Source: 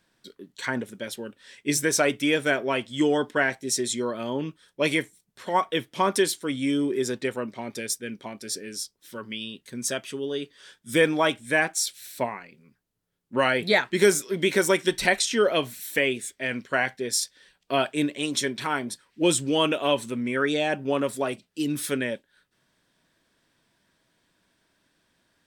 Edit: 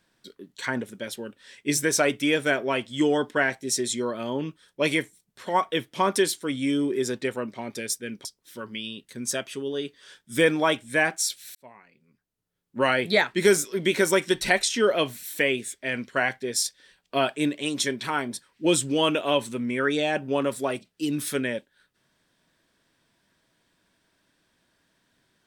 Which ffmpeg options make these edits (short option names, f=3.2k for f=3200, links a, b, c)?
-filter_complex "[0:a]asplit=3[a][b][c];[a]atrim=end=8.252[d];[b]atrim=start=8.818:end=12.12,asetpts=PTS-STARTPTS,afade=t=out:st=3.298:d=0.004:c=hsin[e];[c]atrim=start=12.12,asetpts=PTS-STARTPTS,afade=t=in:d=1.3[f];[e][f]concat=n=2:v=0:a=1[g];[d][g]acrossfade=d=0.004:c1=hsin:c2=hsin"